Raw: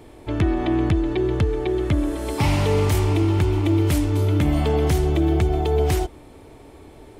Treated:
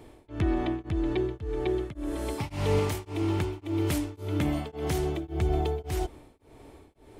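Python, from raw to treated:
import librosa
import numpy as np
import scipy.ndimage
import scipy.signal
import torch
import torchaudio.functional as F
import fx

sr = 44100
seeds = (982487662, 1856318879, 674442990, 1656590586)

y = fx.low_shelf(x, sr, hz=89.0, db=-11.0, at=(2.79, 5.23))
y = y * np.abs(np.cos(np.pi * 1.8 * np.arange(len(y)) / sr))
y = y * librosa.db_to_amplitude(-4.5)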